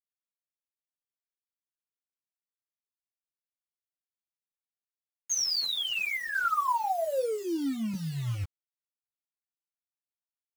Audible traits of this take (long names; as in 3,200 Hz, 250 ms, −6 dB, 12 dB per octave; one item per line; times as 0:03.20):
tremolo saw down 0.63 Hz, depth 60%
a quantiser's noise floor 8 bits, dither none
a shimmering, thickened sound